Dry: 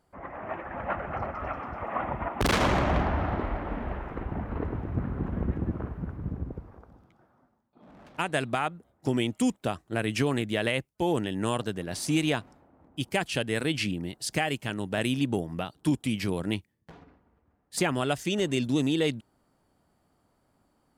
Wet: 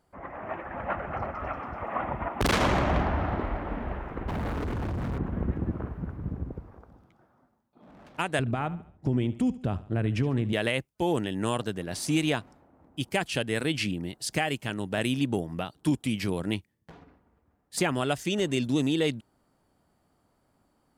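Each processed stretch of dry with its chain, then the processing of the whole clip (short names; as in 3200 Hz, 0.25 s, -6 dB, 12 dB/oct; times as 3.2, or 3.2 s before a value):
4.28–5.18 level quantiser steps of 20 dB + sample leveller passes 5
8.39–10.53 RIAA curve playback + compressor 2.5:1, threshold -25 dBFS + feedback echo 72 ms, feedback 43%, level -17 dB
whole clip: dry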